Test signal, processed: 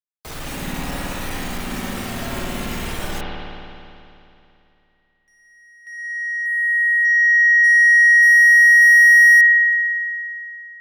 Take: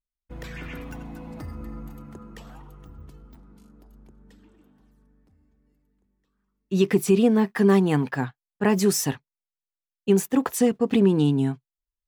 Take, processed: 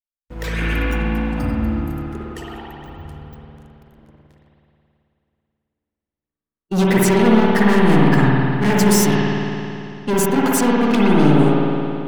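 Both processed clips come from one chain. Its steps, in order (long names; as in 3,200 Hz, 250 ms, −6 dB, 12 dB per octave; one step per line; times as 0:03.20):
leveller curve on the samples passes 5
noise reduction from a noise print of the clip's start 7 dB
spring reverb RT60 2.8 s, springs 54 ms, chirp 80 ms, DRR −5 dB
level −7 dB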